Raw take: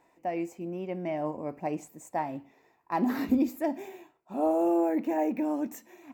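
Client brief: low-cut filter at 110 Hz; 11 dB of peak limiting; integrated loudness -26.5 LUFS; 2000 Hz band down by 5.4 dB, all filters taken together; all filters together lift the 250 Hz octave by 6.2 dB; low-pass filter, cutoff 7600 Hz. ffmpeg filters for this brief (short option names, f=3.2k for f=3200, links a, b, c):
-af "highpass=110,lowpass=7.6k,equalizer=f=250:t=o:g=8,equalizer=f=2k:t=o:g=-6.5,volume=2.5dB,alimiter=limit=-16.5dB:level=0:latency=1"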